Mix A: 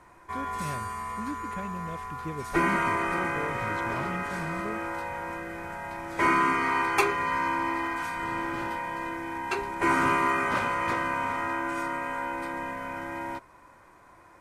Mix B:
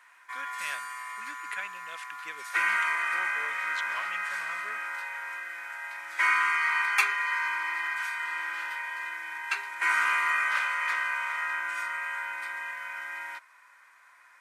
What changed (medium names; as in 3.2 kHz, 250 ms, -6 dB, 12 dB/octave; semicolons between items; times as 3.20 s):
speech +8.5 dB; master: add resonant high-pass 1.7 kHz, resonance Q 1.7